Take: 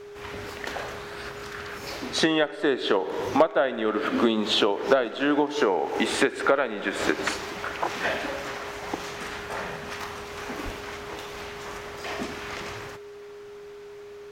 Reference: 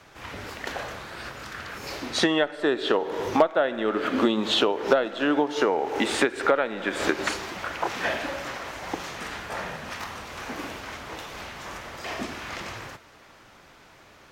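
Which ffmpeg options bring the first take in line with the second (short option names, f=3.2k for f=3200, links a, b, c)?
-filter_complex "[0:a]bandreject=f=410:w=30,asplit=3[a][b][c];[a]afade=t=out:st=10.64:d=0.02[d];[b]highpass=f=140:w=0.5412,highpass=f=140:w=1.3066,afade=t=in:st=10.64:d=0.02,afade=t=out:st=10.76:d=0.02[e];[c]afade=t=in:st=10.76:d=0.02[f];[d][e][f]amix=inputs=3:normalize=0"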